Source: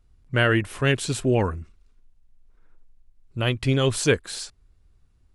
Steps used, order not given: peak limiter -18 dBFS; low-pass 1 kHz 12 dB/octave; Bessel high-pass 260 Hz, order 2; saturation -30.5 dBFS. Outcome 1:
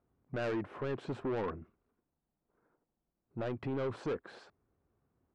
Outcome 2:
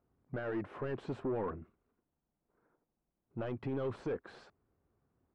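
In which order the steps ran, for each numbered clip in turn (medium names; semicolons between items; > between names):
low-pass > peak limiter > Bessel high-pass > saturation; peak limiter > Bessel high-pass > saturation > low-pass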